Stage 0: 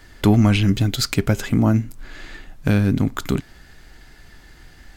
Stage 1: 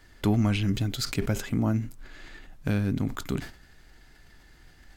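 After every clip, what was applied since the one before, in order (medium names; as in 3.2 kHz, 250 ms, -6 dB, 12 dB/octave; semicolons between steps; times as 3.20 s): decay stretcher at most 120 dB/s; trim -9 dB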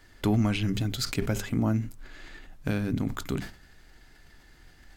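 hum notches 50/100/150/200 Hz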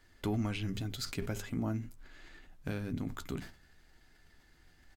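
doubling 12 ms -11 dB; trim -8.5 dB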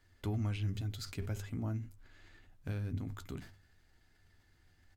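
peaking EQ 96 Hz +13.5 dB 0.38 oct; trim -6 dB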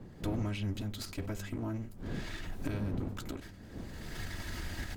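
comb filter that takes the minimum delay 3.1 ms; recorder AGC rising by 33 dB/s; wind noise 230 Hz -47 dBFS; trim +2 dB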